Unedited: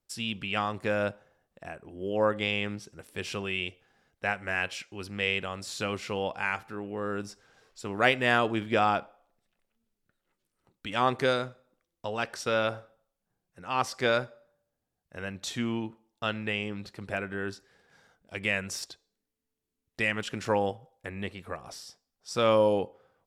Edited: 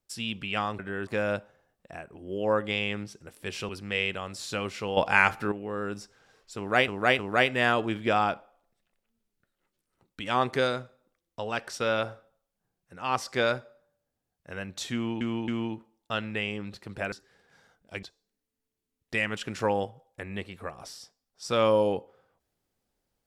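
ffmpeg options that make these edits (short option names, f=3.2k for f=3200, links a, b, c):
-filter_complex "[0:a]asplit=12[a][b][c][d][e][f][g][h][i][j][k][l];[a]atrim=end=0.792[m];[b]atrim=start=17.238:end=17.522[n];[c]atrim=start=0.788:end=3.412[o];[d]atrim=start=4.968:end=6.252[p];[e]atrim=start=6.248:end=6.802,asetpts=PTS-STARTPTS,volume=9.5dB[q];[f]atrim=start=6.798:end=8.162[r];[g]atrim=start=7.848:end=8.162[s];[h]atrim=start=7.848:end=15.872[t];[i]atrim=start=15.598:end=15.872[u];[j]atrim=start=15.598:end=17.242[v];[k]atrim=start=17.518:end=18.432[w];[l]atrim=start=18.888[x];[m][n]acrossfade=d=0.004:c1=hsin:c2=hsin[y];[y][o]acrossfade=d=0.004:c1=hsin:c2=hsin[z];[z][p]acrossfade=d=0.004:c1=hsin:c2=hsin[aa];[aa][q]acrossfade=d=0.004:c1=hsin:c2=hsin[ab];[ab][r]acrossfade=d=0.004:c1=hsin:c2=hsin[ac];[ac][s]acrossfade=d=0.004:c1=hsin:c2=hsin[ad];[ad][t]acrossfade=d=0.004:c1=hsin:c2=hsin[ae];[ae][u]acrossfade=d=0.004:c1=hsin:c2=hsin[af];[af][v]acrossfade=d=0.004:c1=hsin:c2=hsin[ag];[ag][w]acrossfade=d=0.004:c1=hsin:c2=hsin[ah];[ah][x]acrossfade=d=0.004:c1=hsin:c2=hsin"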